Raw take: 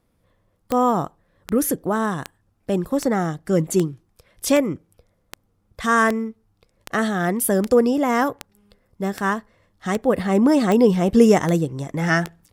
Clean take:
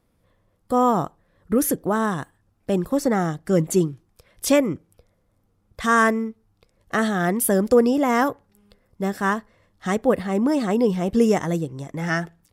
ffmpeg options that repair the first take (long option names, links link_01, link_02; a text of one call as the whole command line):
ffmpeg -i in.wav -af "adeclick=threshold=4,asetnsamples=nb_out_samples=441:pad=0,asendcmd='10.16 volume volume -4.5dB',volume=0dB" out.wav